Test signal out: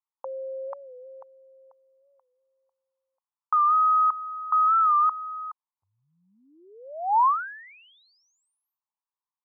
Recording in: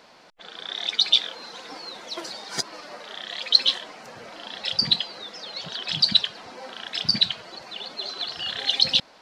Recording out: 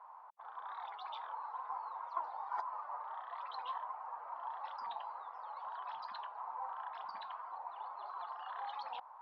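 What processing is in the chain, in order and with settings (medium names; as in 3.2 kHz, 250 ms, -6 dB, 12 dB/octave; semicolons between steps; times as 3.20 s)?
Butterworth band-pass 980 Hz, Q 3.2; warped record 45 rpm, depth 100 cents; trim +5.5 dB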